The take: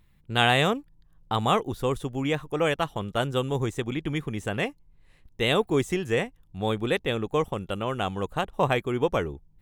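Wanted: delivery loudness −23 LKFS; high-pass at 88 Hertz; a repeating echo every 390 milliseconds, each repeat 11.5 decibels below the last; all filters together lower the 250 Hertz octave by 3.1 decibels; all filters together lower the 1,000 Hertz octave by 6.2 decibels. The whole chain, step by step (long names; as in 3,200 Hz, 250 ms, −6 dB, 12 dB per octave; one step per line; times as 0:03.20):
high-pass filter 88 Hz
parametric band 250 Hz −3.5 dB
parametric band 1,000 Hz −8.5 dB
repeating echo 390 ms, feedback 27%, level −11.5 dB
level +6.5 dB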